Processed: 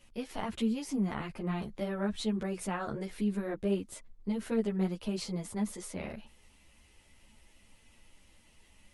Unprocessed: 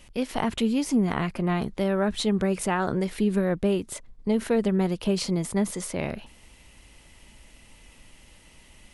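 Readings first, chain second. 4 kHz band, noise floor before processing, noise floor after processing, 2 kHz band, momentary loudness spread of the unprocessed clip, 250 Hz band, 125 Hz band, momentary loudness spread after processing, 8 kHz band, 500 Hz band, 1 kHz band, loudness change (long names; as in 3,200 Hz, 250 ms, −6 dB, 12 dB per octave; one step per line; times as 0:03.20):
−9.5 dB, −54 dBFS, −63 dBFS, −10.0 dB, 7 LU, −8.0 dB, −8.5 dB, 9 LU, −9.5 dB, −10.0 dB, −10.0 dB, −8.5 dB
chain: string-ensemble chorus
level −6.5 dB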